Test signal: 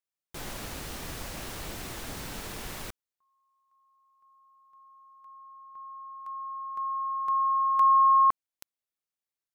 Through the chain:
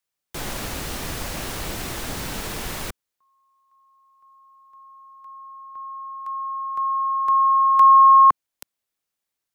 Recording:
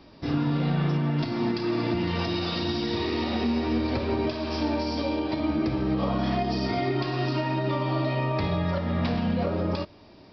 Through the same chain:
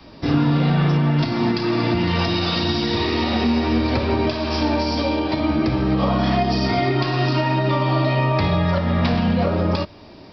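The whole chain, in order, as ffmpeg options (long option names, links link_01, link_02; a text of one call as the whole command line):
ffmpeg -i in.wav -filter_complex "[0:a]acrossover=split=200|710|1100[link_01][link_02][link_03][link_04];[link_01]volume=25.5dB,asoftclip=hard,volume=-25.5dB[link_05];[link_02]adynamicequalizer=threshold=0.00891:dfrequency=350:dqfactor=0.72:tfrequency=350:tqfactor=0.72:attack=5:release=100:ratio=0.375:range=2:mode=cutabove:tftype=bell[link_06];[link_05][link_06][link_03][link_04]amix=inputs=4:normalize=0,volume=8.5dB" out.wav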